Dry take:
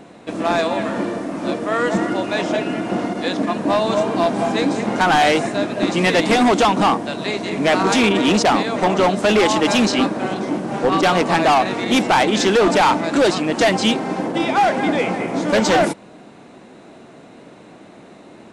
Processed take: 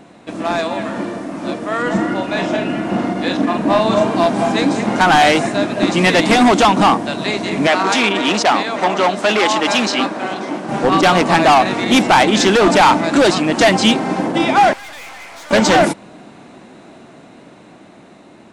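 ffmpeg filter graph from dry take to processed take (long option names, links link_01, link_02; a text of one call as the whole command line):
ffmpeg -i in.wav -filter_complex "[0:a]asettb=1/sr,asplit=3[link_01][link_02][link_03];[link_01]atrim=end=1.824[link_04];[link_02]atrim=start=1.82:end=4.07,asetpts=PTS-STARTPTS,afade=type=in:duration=0.004:curve=qsin,afade=type=out:start_time=2.246:duration=0.004:curve=qsin,bass=frequency=250:gain=2,treble=frequency=4000:gain=-4,asplit=2[link_05][link_06];[link_06]adelay=41,volume=-6.5dB[link_07];[link_05][link_07]amix=inputs=2:normalize=0,atrim=end_sample=99225[link_08];[link_03]atrim=start=4.066[link_09];[link_04][link_08]acrossfade=duration=0.004:curve1=hsin:curve2=qsin[link_10];[link_10][link_09]acrossfade=duration=0.004:curve1=qsin:curve2=hsin,asettb=1/sr,asplit=3[link_11][link_12][link_13];[link_11]atrim=end=7.674[link_14];[link_12]atrim=start=7.67:end=10.69,asetpts=PTS-STARTPTS,afade=type=in:duration=0.004:curve=qsin,afade=type=out:start_time=3.016:duration=0.004:curve=qsin,highpass=frequency=510:poles=1,highshelf=frequency=9100:gain=-10[link_15];[link_13]atrim=start=10.686[link_16];[link_14][link_15]acrossfade=duration=0.004:curve1=hsin:curve2=qsin[link_17];[link_17][link_16]acrossfade=duration=0.004:curve1=qsin:curve2=hsin,asettb=1/sr,asplit=3[link_18][link_19][link_20];[link_18]atrim=end=14.734[link_21];[link_19]atrim=start=14.73:end=15.51,asetpts=PTS-STARTPTS,afade=type=in:duration=0.004:curve=qsin,afade=type=out:start_time=0.776:duration=0.004:curve=qsin,highpass=1200,aeval=exprs='(tanh(70.8*val(0)+0.45)-tanh(0.45))/70.8':channel_layout=same[link_22];[link_20]atrim=start=15.506[link_23];[link_21][link_22]acrossfade=duration=0.004:curve1=hsin:curve2=qsin[link_24];[link_24][link_23]acrossfade=duration=0.004:curve1=qsin:curve2=hsin,equalizer=frequency=460:width=3:gain=-4,dynaudnorm=framelen=830:gausssize=7:maxgain=5.5dB" out.wav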